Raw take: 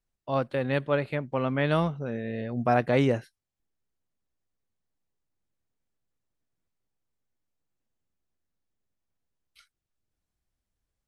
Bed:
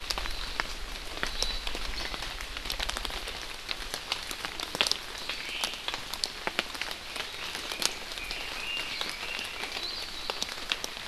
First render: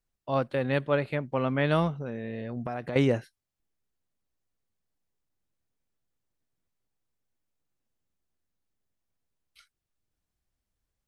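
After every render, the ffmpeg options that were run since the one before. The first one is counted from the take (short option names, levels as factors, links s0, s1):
-filter_complex "[0:a]asettb=1/sr,asplit=3[s0][s1][s2];[s0]atrim=end=1.994[s3];[s1]atrim=start=1.99:end=2.96,asetpts=PTS-STARTPTS,afade=t=in:d=0.004:c=qsin,afade=t=out:st=0.966:d=0.004:c=qsin,acompressor=threshold=0.0316:ratio=6:attack=3.2:release=140:knee=1:detection=peak[s4];[s2]atrim=start=2.956[s5];[s3][s4]acrossfade=d=0.004:c1=hsin:c2=qsin[s6];[s6][s5]acrossfade=d=0.004:c1=qsin:c2=hsin"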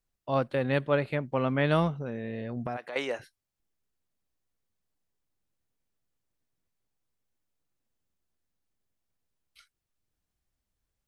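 -filter_complex "[0:a]asplit=3[s0][s1][s2];[s0]afade=t=out:st=2.76:d=0.02[s3];[s1]highpass=650,afade=t=in:st=2.76:d=0.02,afade=t=out:st=3.19:d=0.02[s4];[s2]afade=t=in:st=3.19:d=0.02[s5];[s3][s4][s5]amix=inputs=3:normalize=0"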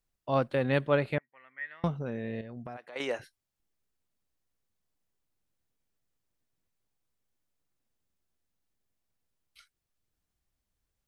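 -filter_complex "[0:a]asettb=1/sr,asplit=3[s0][s1][s2];[s0]atrim=end=1.184[s3];[s1]atrim=start=1.18:end=1.84,asetpts=PTS-STARTPTS,afade=t=in:d=0.004:c=qsin,afade=t=out:st=0.656:d=0.004:c=qsin,bandpass=f=1900:t=q:w=17[s4];[s2]atrim=start=1.836[s5];[s3][s4]acrossfade=d=0.004:c1=hsin:c2=qsin[s6];[s6][s5]acrossfade=d=0.004:c1=qsin:c2=hsin,asplit=3[s7][s8][s9];[s7]atrim=end=2.412[s10];[s8]atrim=start=2.408:end=3.002,asetpts=PTS-STARTPTS,volume=0.398[s11];[s9]atrim=start=2.998[s12];[s10][s11]acrossfade=d=0.004:c1=hsin:c2=hsin[s13];[s13][s12]acrossfade=d=0.004:c1=hsin:c2=hsin"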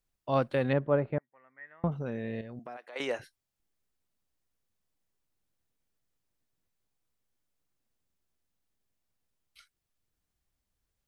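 -filter_complex "[0:a]asettb=1/sr,asplit=3[s0][s1][s2];[s0]atrim=end=0.734[s3];[s1]atrim=start=0.73:end=1.92,asetpts=PTS-STARTPTS,afade=t=in:d=0.004:c=qsin,afade=t=out:st=1.186:d=0.004:c=qsin,lowpass=1100[s4];[s2]atrim=start=1.916[s5];[s3][s4]acrossfade=d=0.004:c1=hsin:c2=qsin[s6];[s6][s5]acrossfade=d=0.004:c1=qsin:c2=hsin,asettb=1/sr,asplit=3[s7][s8][s9];[s7]atrim=end=2.594[s10];[s8]atrim=start=2.59:end=3,asetpts=PTS-STARTPTS,afade=t=in:d=0.004:c=qsin,afade=t=out:st=0.406:d=0.004:c=qsin,highpass=310[s11];[s9]atrim=start=2.996[s12];[s10][s11]acrossfade=d=0.004:c1=hsin:c2=qsin[s13];[s13][s12]acrossfade=d=0.004:c1=qsin:c2=hsin"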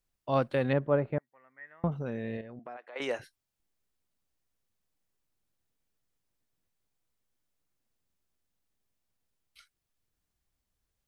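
-filter_complex "[0:a]asettb=1/sr,asplit=3[s0][s1][s2];[s0]atrim=end=2.374[s3];[s1]atrim=start=2.37:end=3.02,asetpts=PTS-STARTPTS,afade=t=in:d=0.004:c=qsin,afade=t=out:st=0.646:d=0.004:c=qsin,bass=f=250:g=-5,treble=f=4000:g=-14[s4];[s2]atrim=start=3.016[s5];[s3][s4]acrossfade=d=0.004:c1=hsin:c2=qsin[s6];[s6][s5]acrossfade=d=0.004:c1=qsin:c2=hsin"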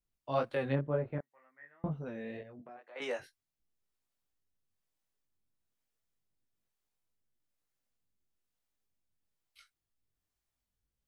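-filter_complex "[0:a]flanger=delay=19:depth=2.9:speed=2,acrossover=split=410[s0][s1];[s0]aeval=exprs='val(0)*(1-0.5/2+0.5/2*cos(2*PI*1.1*n/s))':c=same[s2];[s1]aeval=exprs='val(0)*(1-0.5/2-0.5/2*cos(2*PI*1.1*n/s))':c=same[s3];[s2][s3]amix=inputs=2:normalize=0"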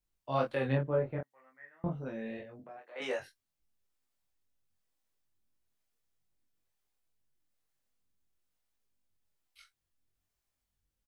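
-filter_complex "[0:a]asplit=2[s0][s1];[s1]adelay=23,volume=0.708[s2];[s0][s2]amix=inputs=2:normalize=0"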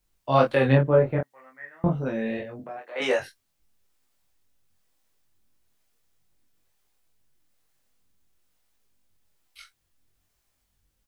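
-af "volume=3.76"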